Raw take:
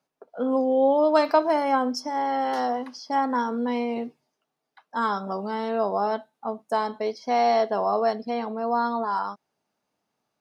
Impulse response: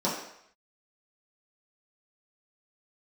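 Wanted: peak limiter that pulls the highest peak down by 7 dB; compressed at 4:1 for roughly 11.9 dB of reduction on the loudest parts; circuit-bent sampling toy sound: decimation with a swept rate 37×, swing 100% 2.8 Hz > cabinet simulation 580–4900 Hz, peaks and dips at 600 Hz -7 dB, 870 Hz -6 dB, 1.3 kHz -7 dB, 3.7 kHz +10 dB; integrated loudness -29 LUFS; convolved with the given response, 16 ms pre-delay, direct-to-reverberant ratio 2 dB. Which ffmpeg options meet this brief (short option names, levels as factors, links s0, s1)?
-filter_complex "[0:a]acompressor=threshold=0.0355:ratio=4,alimiter=limit=0.0631:level=0:latency=1,asplit=2[s0][s1];[1:a]atrim=start_sample=2205,adelay=16[s2];[s1][s2]afir=irnorm=-1:irlink=0,volume=0.224[s3];[s0][s3]amix=inputs=2:normalize=0,acrusher=samples=37:mix=1:aa=0.000001:lfo=1:lforange=37:lforate=2.8,highpass=580,equalizer=f=600:t=q:w=4:g=-7,equalizer=f=870:t=q:w=4:g=-6,equalizer=f=1300:t=q:w=4:g=-7,equalizer=f=3700:t=q:w=4:g=10,lowpass=f=4900:w=0.5412,lowpass=f=4900:w=1.3066,volume=1.68"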